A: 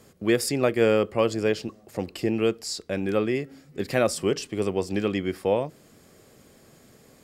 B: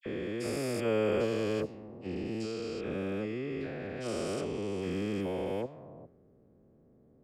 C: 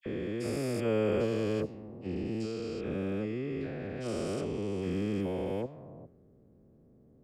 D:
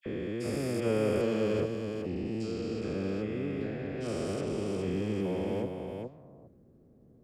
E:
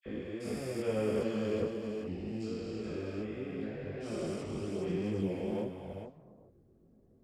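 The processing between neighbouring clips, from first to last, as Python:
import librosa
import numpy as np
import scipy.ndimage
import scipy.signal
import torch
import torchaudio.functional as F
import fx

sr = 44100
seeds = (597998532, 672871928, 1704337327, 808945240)

y1 = fx.spec_steps(x, sr, hold_ms=400)
y1 = fx.env_lowpass(y1, sr, base_hz=440.0, full_db=-24.5)
y1 = fx.dispersion(y1, sr, late='lows', ms=60.0, hz=1600.0)
y1 = y1 * 10.0 ** (-4.5 / 20.0)
y2 = fx.low_shelf(y1, sr, hz=340.0, db=6.5)
y2 = y2 * 10.0 ** (-2.5 / 20.0)
y3 = y2 + 10.0 ** (-5.0 / 20.0) * np.pad(y2, (int(414 * sr / 1000.0), 0))[:len(y2)]
y4 = fx.chorus_voices(y3, sr, voices=4, hz=0.74, base_ms=21, depth_ms=2.9, mix_pct=55)
y4 = y4 * 10.0 ** (-1.5 / 20.0)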